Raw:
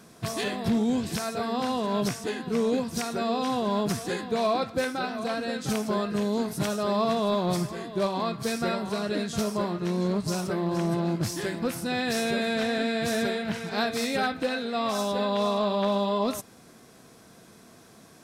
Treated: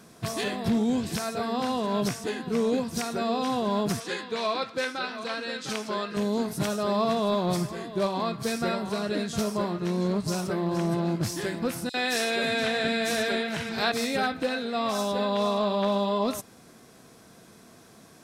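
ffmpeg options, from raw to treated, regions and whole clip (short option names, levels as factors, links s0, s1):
-filter_complex "[0:a]asettb=1/sr,asplit=3[s0][s1][s2];[s0]atrim=end=4.004[s3];[s1]atrim=start=4:end=6.17,asetpts=PTS-STARTPTS,afade=t=in:d=0.004:c=qsin,afade=t=out:st=2.166:d=0.004:c=qsin,lowpass=3600,aemphasis=mode=production:type=riaa,bandreject=f=720:w=6.2[s4];[s2]atrim=start=6.166[s5];[s3][s4]acrossfade=d=0.004:c1=hsin:c2=qsin[s6];[s6][s5]acrossfade=d=0.004:c1=qsin:c2=hsin,asettb=1/sr,asplit=3[s7][s8][s9];[s7]atrim=end=11.894[s10];[s8]atrim=start=11.89:end=13.92,asetpts=PTS-STARTPTS,afade=t=in:d=0.004:c=qsin,afade=t=out:st=2.026:d=0.004:c=qsin,equalizer=f=4000:t=o:w=2.7:g=5.5,acrossover=split=230|5000[s11][s12][s13];[s12]adelay=50[s14];[s11]adelay=540[s15];[s15][s14][s13]amix=inputs=3:normalize=0,atrim=end_sample=89523[s16];[s9]atrim=start=13.916[s17];[s10][s16]acrossfade=d=0.004:c1=hsin:c2=qsin[s18];[s18][s17]acrossfade=d=0.004:c1=qsin:c2=hsin"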